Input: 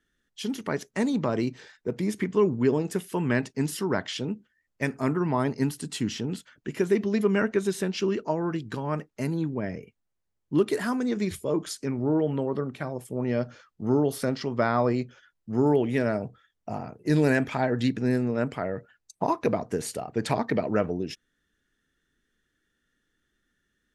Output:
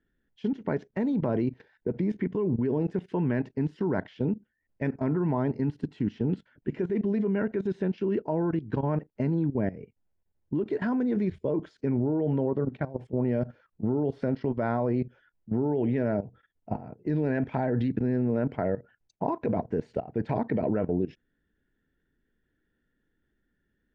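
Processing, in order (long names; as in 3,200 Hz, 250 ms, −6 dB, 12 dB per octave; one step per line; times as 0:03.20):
notch filter 1,200 Hz, Q 5.1
output level in coarse steps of 16 dB
head-to-tape spacing loss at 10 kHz 44 dB
level +7.5 dB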